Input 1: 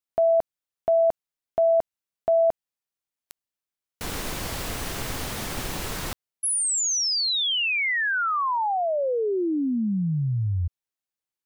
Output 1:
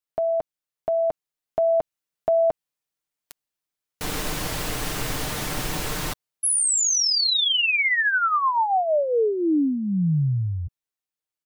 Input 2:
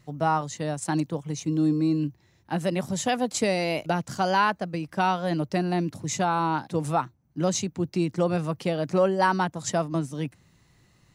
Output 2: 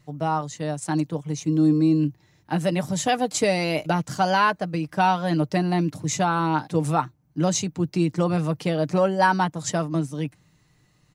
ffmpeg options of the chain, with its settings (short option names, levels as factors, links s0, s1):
-af "aecho=1:1:6.6:0.4,dynaudnorm=f=250:g=11:m=1.58,volume=0.841"